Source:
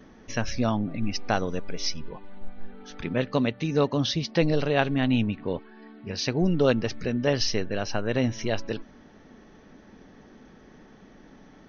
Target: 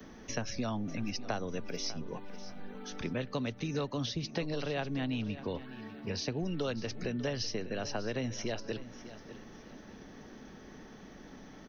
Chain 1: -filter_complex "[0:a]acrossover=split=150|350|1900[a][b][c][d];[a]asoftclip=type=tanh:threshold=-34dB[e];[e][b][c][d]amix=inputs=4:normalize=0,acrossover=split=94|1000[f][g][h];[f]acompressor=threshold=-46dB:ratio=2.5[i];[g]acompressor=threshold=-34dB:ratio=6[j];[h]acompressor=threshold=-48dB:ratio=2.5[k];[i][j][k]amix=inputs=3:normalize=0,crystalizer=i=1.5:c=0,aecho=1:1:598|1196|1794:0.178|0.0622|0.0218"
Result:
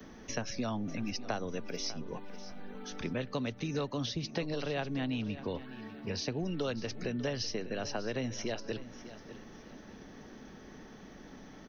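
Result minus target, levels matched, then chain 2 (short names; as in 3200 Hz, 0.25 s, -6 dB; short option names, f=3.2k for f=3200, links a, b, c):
soft clip: distortion +8 dB
-filter_complex "[0:a]acrossover=split=150|350|1900[a][b][c][d];[a]asoftclip=type=tanh:threshold=-25.5dB[e];[e][b][c][d]amix=inputs=4:normalize=0,acrossover=split=94|1000[f][g][h];[f]acompressor=threshold=-46dB:ratio=2.5[i];[g]acompressor=threshold=-34dB:ratio=6[j];[h]acompressor=threshold=-48dB:ratio=2.5[k];[i][j][k]amix=inputs=3:normalize=0,crystalizer=i=1.5:c=0,aecho=1:1:598|1196|1794:0.178|0.0622|0.0218"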